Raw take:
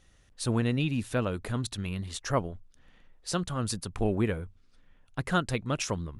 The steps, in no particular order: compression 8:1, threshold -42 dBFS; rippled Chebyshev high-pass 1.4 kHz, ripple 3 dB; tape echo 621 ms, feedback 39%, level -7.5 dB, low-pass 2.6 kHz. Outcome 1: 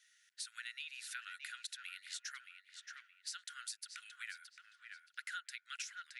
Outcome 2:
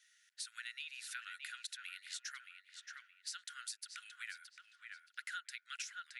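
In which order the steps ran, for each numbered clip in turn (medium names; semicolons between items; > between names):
tape echo > rippled Chebyshev high-pass > compression; rippled Chebyshev high-pass > tape echo > compression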